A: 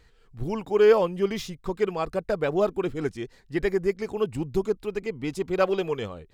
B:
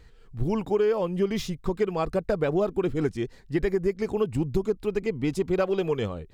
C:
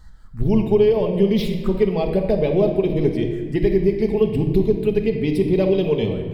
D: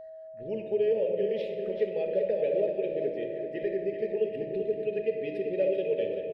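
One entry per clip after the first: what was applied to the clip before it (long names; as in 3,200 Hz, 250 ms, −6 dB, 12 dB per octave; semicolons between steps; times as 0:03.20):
low-shelf EQ 420 Hz +6 dB; downward compressor 12 to 1, threshold −21 dBFS, peak gain reduction 12 dB; level +1 dB
phaser swept by the level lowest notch 410 Hz, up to 1,400 Hz, full sweep at −23.5 dBFS; rectangular room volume 1,800 cubic metres, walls mixed, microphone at 1.4 metres; level +5.5 dB
formant filter e; steady tone 640 Hz −42 dBFS; repeating echo 386 ms, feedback 52%, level −8.5 dB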